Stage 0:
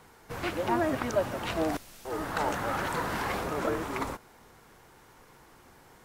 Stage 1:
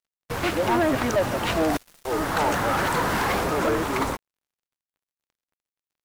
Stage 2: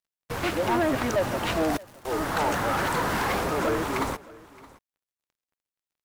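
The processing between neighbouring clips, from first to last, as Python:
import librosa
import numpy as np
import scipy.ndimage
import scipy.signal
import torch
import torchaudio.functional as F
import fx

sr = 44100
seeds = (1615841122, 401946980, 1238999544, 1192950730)

y1 = np.sign(x) * np.maximum(np.abs(x) - 10.0 ** (-47.5 / 20.0), 0.0)
y1 = fx.leveller(y1, sr, passes=3)
y2 = y1 + 10.0 ** (-21.5 / 20.0) * np.pad(y1, (int(620 * sr / 1000.0), 0))[:len(y1)]
y2 = y2 * librosa.db_to_amplitude(-2.5)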